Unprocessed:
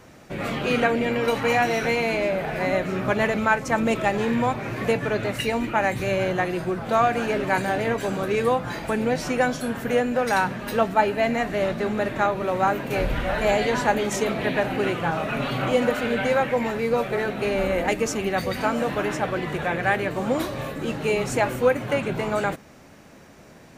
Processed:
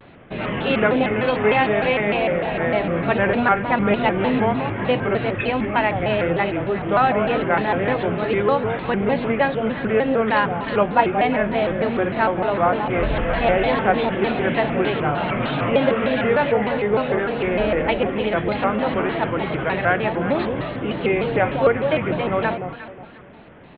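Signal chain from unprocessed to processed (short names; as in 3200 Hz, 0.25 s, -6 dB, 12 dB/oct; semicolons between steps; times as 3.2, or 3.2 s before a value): echo with dull and thin repeats by turns 0.18 s, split 990 Hz, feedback 53%, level -6 dB; downsampling 8000 Hz; shaped vibrato square 3.3 Hz, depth 160 cents; gain +2.5 dB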